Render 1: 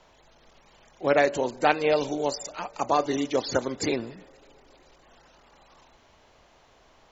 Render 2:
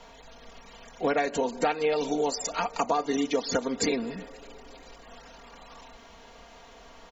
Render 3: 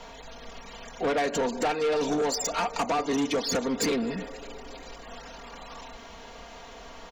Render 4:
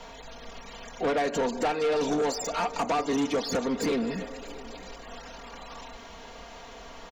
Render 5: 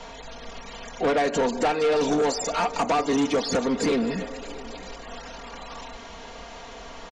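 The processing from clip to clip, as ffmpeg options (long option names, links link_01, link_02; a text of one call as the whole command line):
ffmpeg -i in.wav -af "aecho=1:1:4.3:0.72,acompressor=threshold=-30dB:ratio=5,volume=6dB" out.wav
ffmpeg -i in.wav -af "asoftclip=type=tanh:threshold=-27.5dB,volume=5.5dB" out.wav
ffmpeg -i in.wav -filter_complex "[0:a]acrossover=split=1400[link_01][link_02];[link_02]alimiter=level_in=3.5dB:limit=-24dB:level=0:latency=1:release=30,volume=-3.5dB[link_03];[link_01][link_03]amix=inputs=2:normalize=0,aecho=1:1:661:0.1" out.wav
ffmpeg -i in.wav -af "aresample=22050,aresample=44100,volume=4dB" out.wav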